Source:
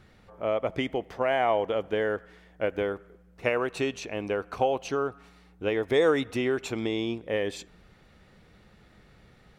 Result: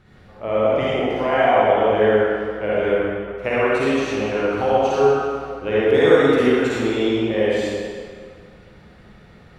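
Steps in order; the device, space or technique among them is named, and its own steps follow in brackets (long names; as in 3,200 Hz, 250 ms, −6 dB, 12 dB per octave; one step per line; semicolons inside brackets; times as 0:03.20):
swimming-pool hall (convolution reverb RT60 2.0 s, pre-delay 42 ms, DRR −8.5 dB; high-shelf EQ 4,600 Hz −6.5 dB)
level +1 dB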